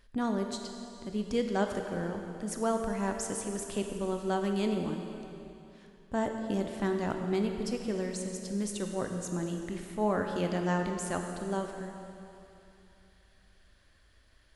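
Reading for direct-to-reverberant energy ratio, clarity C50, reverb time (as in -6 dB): 4.0 dB, 4.5 dB, 2.9 s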